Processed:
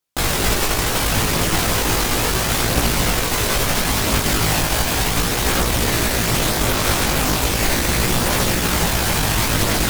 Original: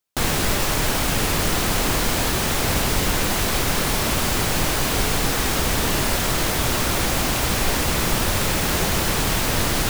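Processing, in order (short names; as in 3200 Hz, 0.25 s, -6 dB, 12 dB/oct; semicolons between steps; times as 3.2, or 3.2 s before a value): added harmonics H 8 -19 dB, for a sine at -7 dBFS; chorus voices 2, 0.36 Hz, delay 18 ms, depth 1.4 ms; gain +5 dB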